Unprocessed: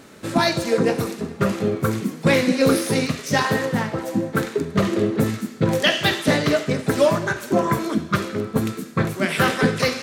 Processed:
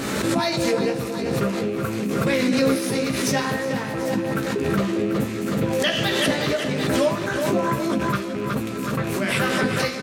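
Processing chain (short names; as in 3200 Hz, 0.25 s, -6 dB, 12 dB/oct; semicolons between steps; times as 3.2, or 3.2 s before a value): rattling part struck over -28 dBFS, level -26 dBFS; doubler 15 ms -6 dB; on a send: feedback echo 0.37 s, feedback 56%, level -10.5 dB; on the sum: backwards sustainer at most 25 dB/s; gain -6 dB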